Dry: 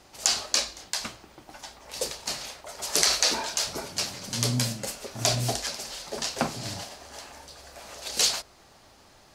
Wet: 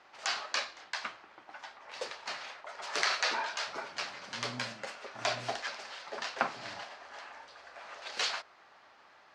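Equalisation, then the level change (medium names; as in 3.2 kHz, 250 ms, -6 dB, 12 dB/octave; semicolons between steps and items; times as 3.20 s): band-pass filter 1.5 kHz, Q 1.1; distance through air 76 m; +2.5 dB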